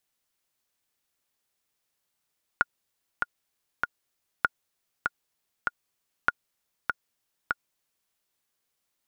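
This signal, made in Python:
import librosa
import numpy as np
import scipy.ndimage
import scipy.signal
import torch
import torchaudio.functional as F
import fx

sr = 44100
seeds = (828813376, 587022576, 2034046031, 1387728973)

y = fx.click_track(sr, bpm=98, beats=3, bars=3, hz=1430.0, accent_db=4.5, level_db=-7.5)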